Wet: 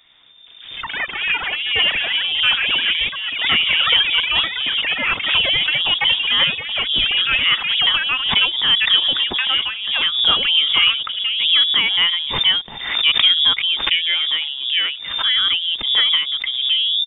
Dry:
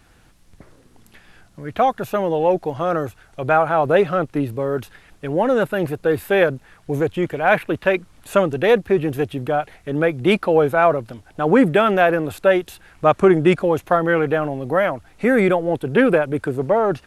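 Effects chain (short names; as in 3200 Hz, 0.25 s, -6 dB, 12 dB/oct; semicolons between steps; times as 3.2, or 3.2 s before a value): tape stop at the end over 0.39 s; echoes that change speed 0.1 s, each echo +7 st, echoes 3; inverted band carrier 3600 Hz; backwards sustainer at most 61 dB/s; gain -2 dB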